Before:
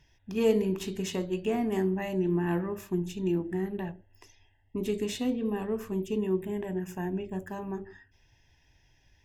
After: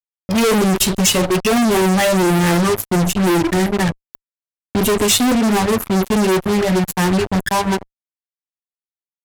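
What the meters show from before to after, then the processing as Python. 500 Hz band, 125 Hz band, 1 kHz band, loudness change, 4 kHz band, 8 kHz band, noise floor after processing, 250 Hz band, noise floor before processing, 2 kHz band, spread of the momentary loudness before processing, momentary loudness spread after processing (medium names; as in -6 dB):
+12.5 dB, +15.0 dB, +21.0 dB, +15.0 dB, +23.0 dB, +26.0 dB, under -85 dBFS, +14.0 dB, -66 dBFS, +21.0 dB, 9 LU, 5 LU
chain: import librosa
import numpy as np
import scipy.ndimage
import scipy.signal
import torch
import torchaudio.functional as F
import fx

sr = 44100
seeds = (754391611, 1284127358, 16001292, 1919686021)

y = fx.bin_expand(x, sr, power=2.0)
y = fx.fuzz(y, sr, gain_db=52.0, gate_db=-51.0)
y = fx.dynamic_eq(y, sr, hz=9800.0, q=0.77, threshold_db=-39.0, ratio=4.0, max_db=6)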